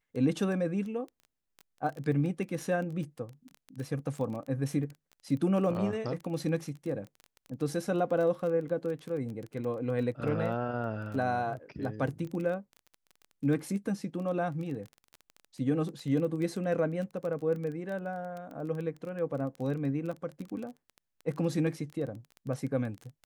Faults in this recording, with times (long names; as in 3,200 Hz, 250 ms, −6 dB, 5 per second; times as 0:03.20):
surface crackle 17 per second −36 dBFS